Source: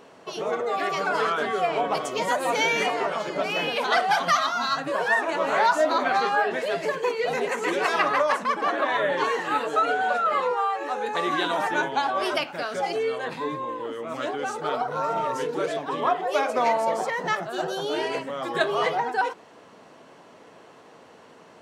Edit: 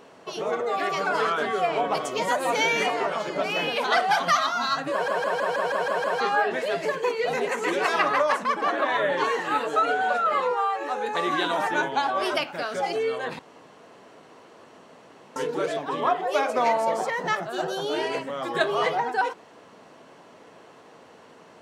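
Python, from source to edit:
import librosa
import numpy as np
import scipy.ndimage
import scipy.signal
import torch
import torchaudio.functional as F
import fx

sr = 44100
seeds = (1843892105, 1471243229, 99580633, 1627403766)

y = fx.edit(x, sr, fx.stutter_over(start_s=4.92, slice_s=0.16, count=8),
    fx.room_tone_fill(start_s=13.39, length_s=1.97), tone=tone)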